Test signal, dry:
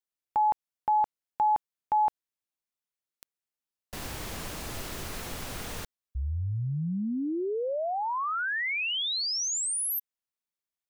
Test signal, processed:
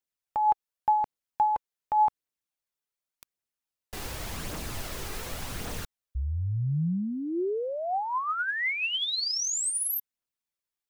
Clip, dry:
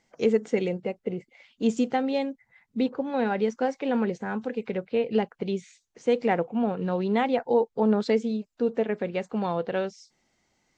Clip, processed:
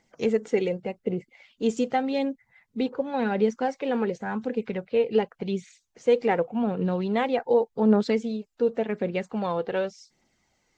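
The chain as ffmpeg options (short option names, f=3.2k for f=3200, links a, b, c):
-af "aphaser=in_gain=1:out_gain=1:delay=2.6:decay=0.35:speed=0.88:type=triangular"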